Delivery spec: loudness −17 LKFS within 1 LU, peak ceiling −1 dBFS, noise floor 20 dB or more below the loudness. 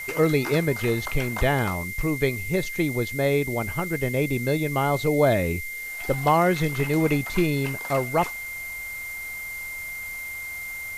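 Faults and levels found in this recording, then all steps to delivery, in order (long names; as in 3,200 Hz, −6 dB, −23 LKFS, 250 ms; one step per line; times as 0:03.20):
interfering tone 2,100 Hz; level of the tone −32 dBFS; background noise floor −34 dBFS; target noise floor −45 dBFS; integrated loudness −25.0 LKFS; sample peak −7.5 dBFS; target loudness −17.0 LKFS
→ notch filter 2,100 Hz, Q 30
broadband denoise 11 dB, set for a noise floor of −34 dBFS
level +8 dB
brickwall limiter −1 dBFS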